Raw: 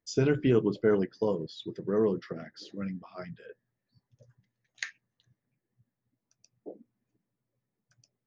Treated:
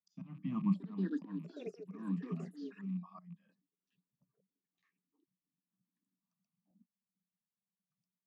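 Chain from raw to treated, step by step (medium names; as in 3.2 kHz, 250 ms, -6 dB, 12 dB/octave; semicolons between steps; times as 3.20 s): rattle on loud lows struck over -38 dBFS, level -36 dBFS; gate -54 dBFS, range -14 dB; slow attack 516 ms; two resonant band-passes 460 Hz, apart 2.7 oct; static phaser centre 390 Hz, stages 6; ever faster or slower copies 683 ms, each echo +7 st, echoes 2, each echo -6 dB; 4.86–6.71 s: three bands compressed up and down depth 70%; trim +11 dB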